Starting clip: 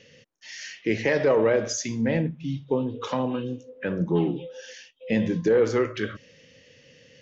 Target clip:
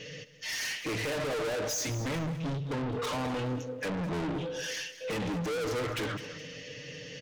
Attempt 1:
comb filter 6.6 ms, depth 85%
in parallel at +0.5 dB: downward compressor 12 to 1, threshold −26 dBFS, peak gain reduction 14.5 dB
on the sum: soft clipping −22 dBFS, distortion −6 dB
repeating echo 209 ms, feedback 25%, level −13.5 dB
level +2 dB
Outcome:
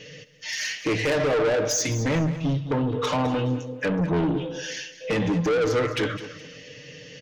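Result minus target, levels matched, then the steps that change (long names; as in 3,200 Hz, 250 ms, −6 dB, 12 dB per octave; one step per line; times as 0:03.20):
soft clipping: distortion −5 dB
change: soft clipping −33.5 dBFS, distortion −1 dB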